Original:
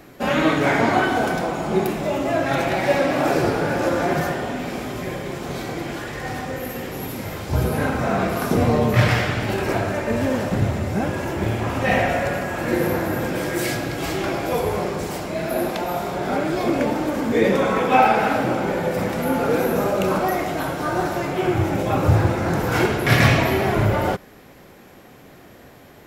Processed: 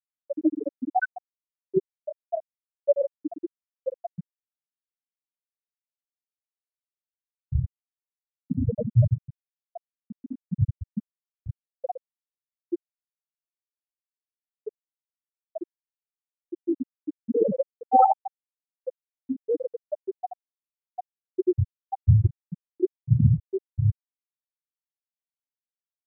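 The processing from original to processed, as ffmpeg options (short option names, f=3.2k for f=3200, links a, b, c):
-filter_complex "[0:a]asplit=3[a][b][c];[a]atrim=end=12.77,asetpts=PTS-STARTPTS,afade=t=out:st=12.766:d=0.004:c=hsin[d];[b]atrim=start=12.77:end=14.58,asetpts=PTS-STARTPTS,volume=0[e];[c]atrim=start=14.58,asetpts=PTS-STARTPTS,afade=t=in:d=0.004:c=hsin[f];[d][e][f]concat=n=3:v=0:a=1,afftfilt=real='re*gte(hypot(re,im),1)':imag='im*gte(hypot(re,im),1)':win_size=1024:overlap=0.75,highshelf=f=2.9k:t=q:w=3:g=-7.5"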